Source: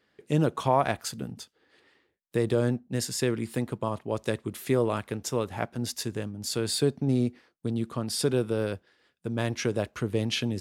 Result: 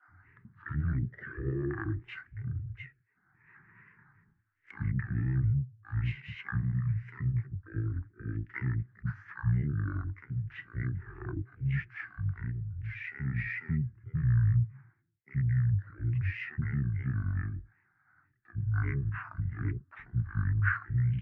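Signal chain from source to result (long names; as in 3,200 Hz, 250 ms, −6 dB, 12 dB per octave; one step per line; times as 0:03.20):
drawn EQ curve 150 Hz 0 dB, 220 Hz +15 dB, 500 Hz −10 dB, 710 Hz +6 dB, 1,100 Hz −26 dB, 3,500 Hz +14 dB, 7,900 Hz −29 dB
granular cloud, spray 19 ms, pitch spread up and down by 3 semitones
upward compression, threshold −37 dBFS
multiband delay without the direct sound highs, lows 40 ms, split 810 Hz
wrong playback speed 15 ips tape played at 7.5 ips
level −8.5 dB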